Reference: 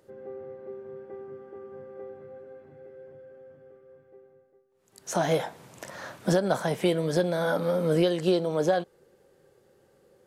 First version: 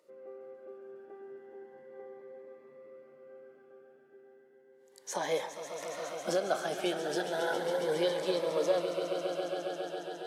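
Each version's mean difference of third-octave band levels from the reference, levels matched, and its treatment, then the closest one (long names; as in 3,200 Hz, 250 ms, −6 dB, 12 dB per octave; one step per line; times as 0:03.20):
5.5 dB: high-pass filter 460 Hz 12 dB per octave
high-shelf EQ 7,900 Hz −6.5 dB
on a send: echo that builds up and dies away 137 ms, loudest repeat 5, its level −11.5 dB
on the sum: phaser whose notches keep moving one way rising 0.34 Hz
level −2 dB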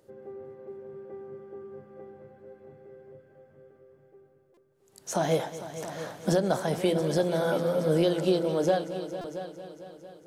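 2.5 dB: parametric band 1,700 Hz −4 dB 1.7 octaves
hum removal 87.06 Hz, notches 6
on a send: echo machine with several playback heads 226 ms, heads all three, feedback 45%, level −15 dB
on the sum: buffer that repeats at 0:04.54/0:09.21, samples 128, times 10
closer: second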